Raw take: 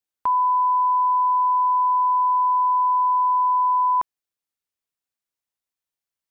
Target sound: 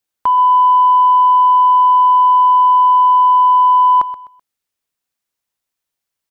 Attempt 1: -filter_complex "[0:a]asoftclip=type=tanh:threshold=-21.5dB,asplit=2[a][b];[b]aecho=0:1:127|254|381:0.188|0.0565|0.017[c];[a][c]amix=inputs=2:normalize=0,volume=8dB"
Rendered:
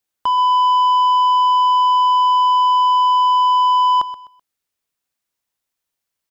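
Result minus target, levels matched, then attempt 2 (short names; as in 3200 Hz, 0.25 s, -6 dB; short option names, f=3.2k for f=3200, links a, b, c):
soft clip: distortion +18 dB
-filter_complex "[0:a]asoftclip=type=tanh:threshold=-10dB,asplit=2[a][b];[b]aecho=0:1:127|254|381:0.188|0.0565|0.017[c];[a][c]amix=inputs=2:normalize=0,volume=8dB"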